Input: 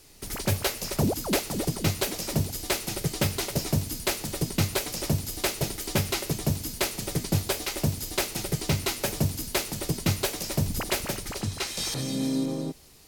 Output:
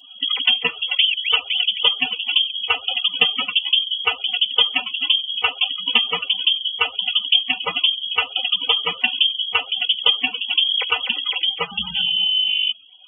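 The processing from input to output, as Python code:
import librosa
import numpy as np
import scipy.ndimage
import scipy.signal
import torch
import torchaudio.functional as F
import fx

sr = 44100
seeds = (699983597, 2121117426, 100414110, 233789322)

p1 = fx.transient(x, sr, attack_db=10, sustain_db=-4)
p2 = fx.spec_topn(p1, sr, count=64)
p3 = fx.freq_invert(p2, sr, carrier_hz=3300)
p4 = scipy.signal.sosfilt(scipy.signal.butter(4, 83.0, 'highpass', fs=sr, output='sos'), p3)
p5 = fx.notch(p4, sr, hz=1700.0, q=5.3)
p6 = p5 + 0.9 * np.pad(p5, (int(4.0 * sr / 1000.0), 0))[:len(p5)]
p7 = fx.over_compress(p6, sr, threshold_db=-29.0, ratio=-1.0)
y = p6 + F.gain(torch.from_numpy(p7), -1.0).numpy()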